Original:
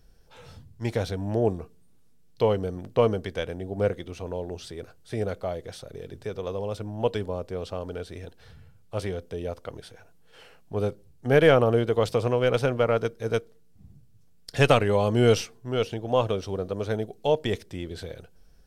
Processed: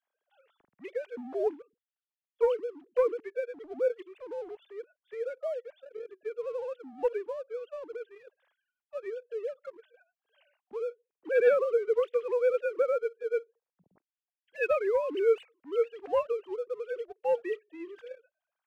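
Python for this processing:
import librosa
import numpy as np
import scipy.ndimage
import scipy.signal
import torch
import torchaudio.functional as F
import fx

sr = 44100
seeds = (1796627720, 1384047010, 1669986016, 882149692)

y = fx.sine_speech(x, sr)
y = fx.leveller(y, sr, passes=1)
y = y * 10.0 ** (-8.5 / 20.0)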